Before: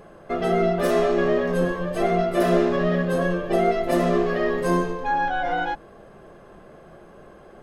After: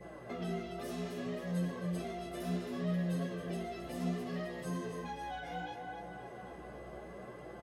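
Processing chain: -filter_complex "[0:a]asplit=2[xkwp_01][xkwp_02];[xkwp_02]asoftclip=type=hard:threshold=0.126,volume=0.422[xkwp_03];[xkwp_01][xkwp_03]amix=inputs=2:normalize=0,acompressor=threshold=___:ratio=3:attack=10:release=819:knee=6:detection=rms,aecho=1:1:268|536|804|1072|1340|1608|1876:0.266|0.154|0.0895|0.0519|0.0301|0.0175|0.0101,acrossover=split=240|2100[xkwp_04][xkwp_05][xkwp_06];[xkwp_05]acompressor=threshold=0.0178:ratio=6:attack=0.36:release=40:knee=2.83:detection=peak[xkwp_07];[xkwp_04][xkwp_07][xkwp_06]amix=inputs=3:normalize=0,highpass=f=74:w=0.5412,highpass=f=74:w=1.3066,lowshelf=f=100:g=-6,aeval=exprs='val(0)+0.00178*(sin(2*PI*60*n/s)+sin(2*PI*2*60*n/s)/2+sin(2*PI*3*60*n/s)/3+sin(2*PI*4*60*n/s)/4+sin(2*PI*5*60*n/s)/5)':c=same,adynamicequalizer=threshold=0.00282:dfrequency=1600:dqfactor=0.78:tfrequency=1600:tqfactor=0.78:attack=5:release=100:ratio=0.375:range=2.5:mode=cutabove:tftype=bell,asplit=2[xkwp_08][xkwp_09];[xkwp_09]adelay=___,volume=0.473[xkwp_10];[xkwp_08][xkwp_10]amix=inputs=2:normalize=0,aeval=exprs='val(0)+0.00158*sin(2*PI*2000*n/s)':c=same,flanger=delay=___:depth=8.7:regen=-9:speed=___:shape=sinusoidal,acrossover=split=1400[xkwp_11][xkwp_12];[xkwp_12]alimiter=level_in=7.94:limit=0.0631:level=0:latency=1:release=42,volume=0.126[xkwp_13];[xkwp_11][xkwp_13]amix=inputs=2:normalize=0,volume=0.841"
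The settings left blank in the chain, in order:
0.0562, 16, 5.8, 0.66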